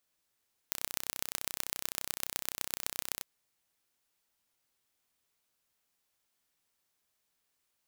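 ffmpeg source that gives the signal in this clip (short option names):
-f lavfi -i "aevalsrc='0.631*eq(mod(n,1391),0)*(0.5+0.5*eq(mod(n,5564),0))':d=2.5:s=44100"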